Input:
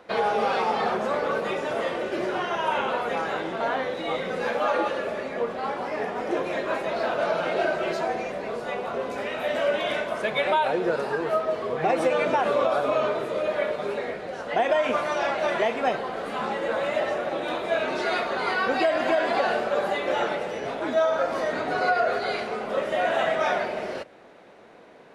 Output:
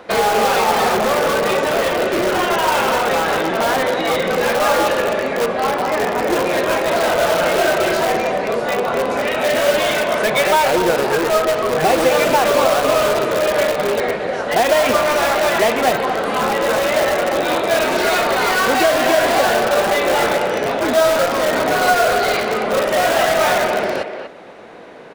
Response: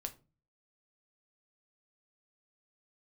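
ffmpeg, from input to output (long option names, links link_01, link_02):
-filter_complex "[0:a]asplit=2[link_01][link_02];[link_02]aeval=exprs='(mod(13.3*val(0)+1,2)-1)/13.3':channel_layout=same,volume=-5.5dB[link_03];[link_01][link_03]amix=inputs=2:normalize=0,asplit=2[link_04][link_05];[link_05]adelay=240,highpass=300,lowpass=3400,asoftclip=type=hard:threshold=-20.5dB,volume=-7dB[link_06];[link_04][link_06]amix=inputs=2:normalize=0,volume=7.5dB"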